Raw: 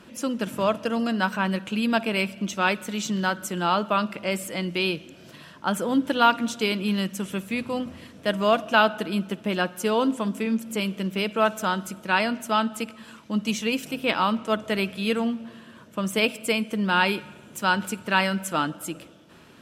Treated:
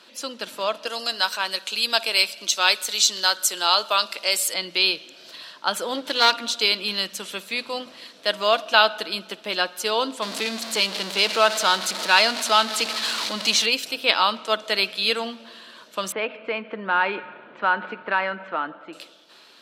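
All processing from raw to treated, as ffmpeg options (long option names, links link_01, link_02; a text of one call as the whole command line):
ffmpeg -i in.wav -filter_complex "[0:a]asettb=1/sr,asplit=3[link_01][link_02][link_03];[link_01]atrim=end=0.874[link_04];[link_02]atrim=start=0.87:end=4.54,asetpts=PTS-STARTPTS,afade=type=in:duration=0.004:curve=qsin,afade=type=out:start_time=3.666:duration=0.004:curve=qsin,highpass=180,bass=frequency=250:gain=-8,treble=frequency=4000:gain=11[link_05];[link_03]atrim=start=4.536[link_06];[link_04][link_05]acrossfade=duration=0.004:curve1=hsin:curve2=qsin[link_07];[link_07][link_06]acrossfade=duration=0.004:curve1=qsin:curve2=hsin,asettb=1/sr,asplit=3[link_08][link_09][link_10];[link_08]atrim=end=5.954[link_11];[link_09]atrim=start=5.95:end=6.39,asetpts=PTS-STARTPTS,afade=type=in:duration=0.004:curve=qsin,afade=type=out:start_time=0.436:duration=0.004:curve=qsin,aeval=exprs='clip(val(0),-1,0.0473)':channel_layout=same,acompressor=mode=upward:threshold=-27dB:ratio=2.5:attack=3.2:release=140:knee=2.83:detection=peak[link_12];[link_10]atrim=start=6.386[link_13];[link_11][link_12]acrossfade=duration=0.004:curve1=hsin:curve2=qsin[link_14];[link_14][link_13]acrossfade=duration=0.004:curve1=qsin:curve2=hsin,asettb=1/sr,asplit=3[link_15][link_16][link_17];[link_15]atrim=end=10.224[link_18];[link_16]atrim=start=10.22:end=13.66,asetpts=PTS-STARTPTS,afade=type=in:duration=0.004:curve=qsin,afade=type=out:start_time=3.436:duration=0.004:curve=qsin,aeval=exprs='val(0)+0.5*0.0473*sgn(val(0))':channel_layout=same,lowpass=11000[link_19];[link_17]atrim=start=13.656[link_20];[link_18][link_19]acrossfade=duration=0.004:curve1=hsin:curve2=qsin[link_21];[link_21][link_20]acrossfade=duration=0.004:curve1=qsin:curve2=hsin,asettb=1/sr,asplit=3[link_22][link_23][link_24];[link_22]atrim=end=16.124[link_25];[link_23]atrim=start=16.12:end=18.93,asetpts=PTS-STARTPTS,afade=type=in:duration=0.004:curve=qsin,afade=type=out:start_time=2.806:duration=0.004:curve=qsin,lowpass=frequency=2000:width=0.5412,lowpass=frequency=2000:width=1.3066,acompressor=threshold=-27dB:ratio=2:attack=3.2:release=140:knee=1:detection=peak[link_26];[link_24]atrim=start=18.926[link_27];[link_25][link_26]acrossfade=duration=0.004:curve1=hsin:curve2=qsin[link_28];[link_28][link_27]acrossfade=duration=0.004:curve1=qsin:curve2=hsin,highpass=500,equalizer=frequency=4200:width=2:gain=13.5,dynaudnorm=framelen=370:gausssize=11:maxgain=11.5dB,volume=-1dB" out.wav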